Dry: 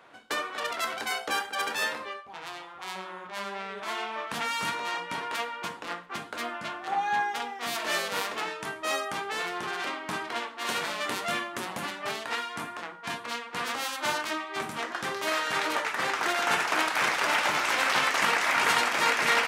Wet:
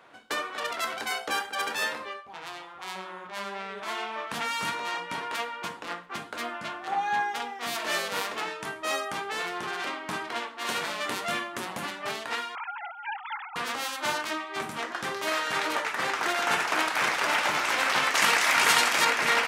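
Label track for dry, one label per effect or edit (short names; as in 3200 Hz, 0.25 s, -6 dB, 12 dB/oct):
12.550000	13.560000	sine-wave speech
18.150000	19.050000	high shelf 2800 Hz +8 dB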